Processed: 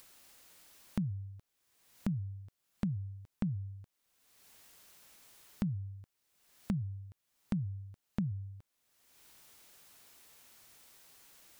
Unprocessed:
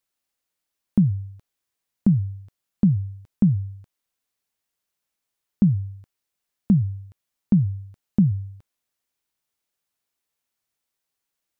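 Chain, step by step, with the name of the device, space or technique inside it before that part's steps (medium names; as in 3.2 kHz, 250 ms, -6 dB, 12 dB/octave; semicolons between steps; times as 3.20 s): upward and downward compression (upward compressor, threshold -27 dBFS; compression 3:1, threshold -25 dBFS, peak gain reduction 9 dB); trim -8.5 dB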